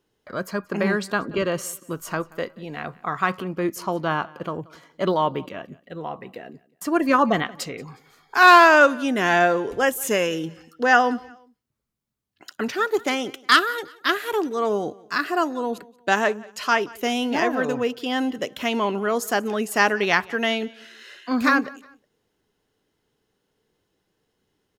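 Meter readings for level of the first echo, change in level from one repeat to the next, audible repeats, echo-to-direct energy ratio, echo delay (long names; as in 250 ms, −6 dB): −23.0 dB, −9.5 dB, 2, −22.5 dB, 180 ms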